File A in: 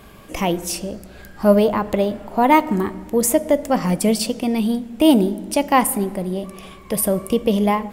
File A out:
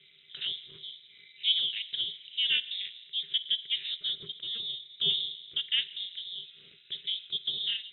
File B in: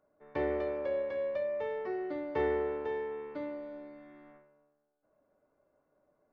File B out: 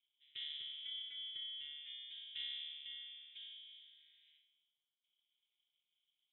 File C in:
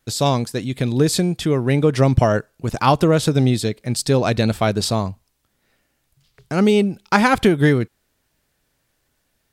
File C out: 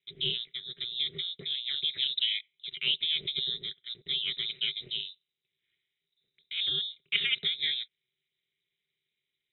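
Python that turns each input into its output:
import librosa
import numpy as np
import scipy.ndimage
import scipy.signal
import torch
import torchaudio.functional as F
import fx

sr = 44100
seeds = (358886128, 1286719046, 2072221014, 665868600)

y = fx.freq_invert(x, sr, carrier_hz=3800)
y = fx.vowel_filter(y, sr, vowel='i')
y = y * np.sin(2.0 * np.pi * 120.0 * np.arange(len(y)) / sr)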